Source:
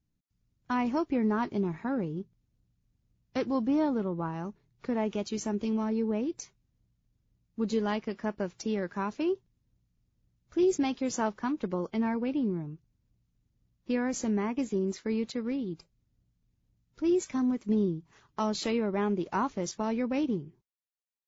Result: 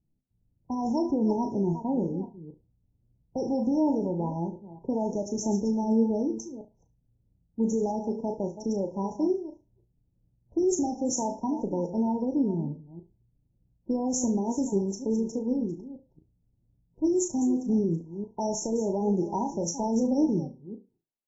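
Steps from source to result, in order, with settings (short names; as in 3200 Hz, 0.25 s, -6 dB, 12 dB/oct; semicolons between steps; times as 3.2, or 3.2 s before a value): reverse delay 0.228 s, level -13 dB; high shelf 3700 Hz +9 dB; low-pass opened by the level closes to 710 Hz, open at -24 dBFS; flutter echo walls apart 6.1 m, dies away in 0.26 s; limiter -21 dBFS, peak gain reduction 6.5 dB; flange 0.59 Hz, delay 5.4 ms, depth 8.4 ms, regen +70%; brick-wall FIR band-stop 990–5300 Hz; gain +7.5 dB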